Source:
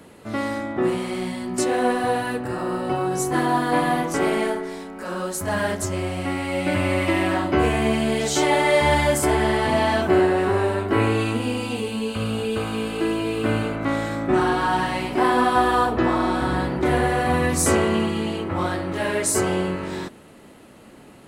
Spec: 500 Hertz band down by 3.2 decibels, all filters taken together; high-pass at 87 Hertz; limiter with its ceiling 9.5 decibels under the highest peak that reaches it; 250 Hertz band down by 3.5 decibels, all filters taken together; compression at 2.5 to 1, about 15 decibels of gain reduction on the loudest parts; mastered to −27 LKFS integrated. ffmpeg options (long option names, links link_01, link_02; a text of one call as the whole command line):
ffmpeg -i in.wav -af "highpass=87,equalizer=frequency=250:width_type=o:gain=-3.5,equalizer=frequency=500:width_type=o:gain=-3,acompressor=threshold=-40dB:ratio=2.5,volume=13.5dB,alimiter=limit=-18.5dB:level=0:latency=1" out.wav